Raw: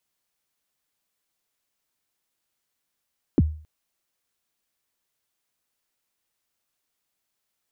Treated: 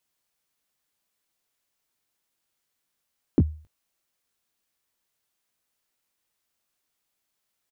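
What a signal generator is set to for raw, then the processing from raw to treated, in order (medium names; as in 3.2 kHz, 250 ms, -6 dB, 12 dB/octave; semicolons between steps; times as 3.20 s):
kick drum length 0.27 s, from 380 Hz, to 77 Hz, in 34 ms, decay 0.43 s, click off, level -11 dB
doubling 20 ms -12 dB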